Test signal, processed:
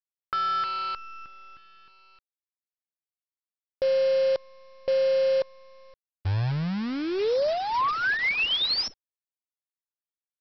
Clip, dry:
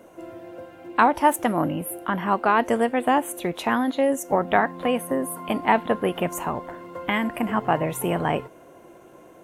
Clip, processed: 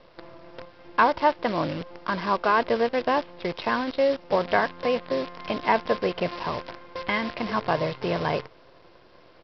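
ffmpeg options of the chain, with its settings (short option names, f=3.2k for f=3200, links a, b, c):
-af "aecho=1:1:1.9:0.4,aresample=11025,acrusher=bits=6:dc=4:mix=0:aa=0.000001,aresample=44100,volume=-2.5dB"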